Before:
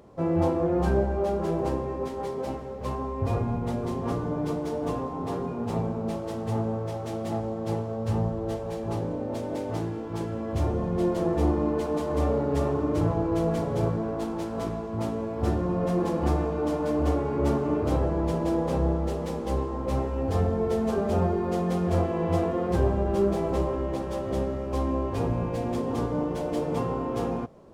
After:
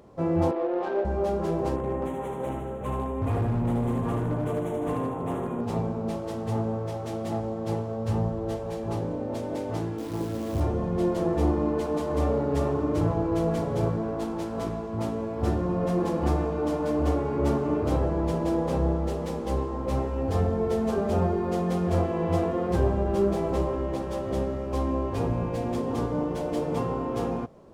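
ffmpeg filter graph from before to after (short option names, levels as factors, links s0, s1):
-filter_complex "[0:a]asettb=1/sr,asplit=3[s0][s1][s2];[s0]atrim=end=0.514[s3];[s1]atrim=start=0.51:end=1.05,asetpts=PTS-STARTPTS,afade=t=in:d=0.004:c=qsin,afade=t=out:st=0.536:d=0.004:c=qsin,highpass=f=350:w=0.5412,highpass=f=350:w=1.3066,adynamicsmooth=sensitivity=3:basefreq=1300[s4];[s2]atrim=start=1.046[s5];[s3][s4]acrossfade=d=0.004:c1=hsin:c2=qsin[s6];[s6][s5]acrossfade=d=0.004:c1=qsin:c2=hsin,asettb=1/sr,asplit=3[s7][s8][s9];[s7]atrim=end=1.764[s10];[s8]atrim=start=1.76:end=5.61,asetpts=PTS-STARTPTS,afade=t=in:d=0.004:c=qsin,afade=t=out:st=3.846:d=0.004:c=qsin,asuperstop=centerf=4800:order=4:qfactor=1.2,aecho=1:1:76|152|228|304|380|456|532|608|684:0.596|0.357|0.214|0.129|0.0772|0.0463|0.0278|0.0167|0.01,atrim=end_sample=169785,asoftclip=type=hard:threshold=0.0794[s11];[s9]atrim=start=5.606[s12];[s10][s11]acrossfade=d=0.004:c1=hsin:c2=qsin[s13];[s13][s12]acrossfade=d=0.004:c1=qsin:c2=hsin,asettb=1/sr,asplit=3[s14][s15][s16];[s14]atrim=end=9.984[s17];[s15]atrim=start=9.98:end=10.61,asetpts=PTS-STARTPTS,afade=t=in:d=0.004:c=qsin,afade=t=out:st=0.626:d=0.004:c=qsin,lowpass=1400,equalizer=f=300:t=o:w=0.2:g=7.5,acrusher=bits=8:dc=4:mix=0:aa=0.000001[s18];[s16]atrim=start=10.606[s19];[s17][s18]acrossfade=d=0.004:c1=hsin:c2=qsin[s20];[s20][s19]acrossfade=d=0.004:c1=qsin:c2=hsin"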